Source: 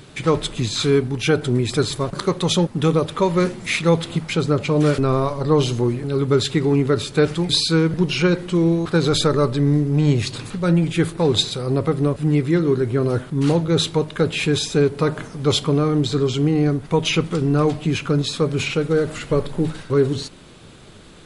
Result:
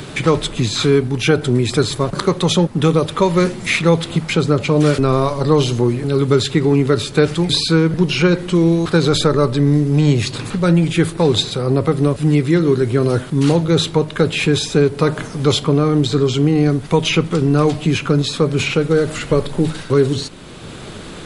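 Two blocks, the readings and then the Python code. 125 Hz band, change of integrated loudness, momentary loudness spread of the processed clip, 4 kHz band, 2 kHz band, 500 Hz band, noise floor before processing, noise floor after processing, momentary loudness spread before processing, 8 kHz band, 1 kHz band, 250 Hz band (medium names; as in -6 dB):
+4.0 dB, +3.5 dB, 4 LU, +2.5 dB, +4.5 dB, +3.5 dB, -42 dBFS, -32 dBFS, 4 LU, +3.0 dB, +4.0 dB, +4.0 dB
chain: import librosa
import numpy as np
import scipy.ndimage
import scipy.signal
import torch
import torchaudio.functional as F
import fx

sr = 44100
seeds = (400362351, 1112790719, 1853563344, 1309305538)

y = fx.band_squash(x, sr, depth_pct=40)
y = y * 10.0 ** (3.5 / 20.0)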